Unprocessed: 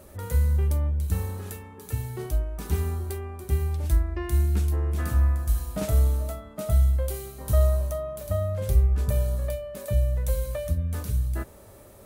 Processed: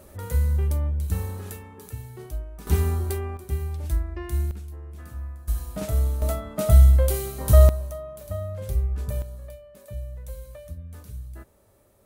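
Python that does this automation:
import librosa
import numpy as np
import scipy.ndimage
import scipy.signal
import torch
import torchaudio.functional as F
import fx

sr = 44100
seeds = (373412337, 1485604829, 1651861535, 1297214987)

y = fx.gain(x, sr, db=fx.steps((0.0, 0.0), (1.89, -6.5), (2.67, 4.5), (3.37, -3.0), (4.51, -13.5), (5.48, -2.0), (6.22, 7.0), (7.69, -4.5), (9.22, -11.5)))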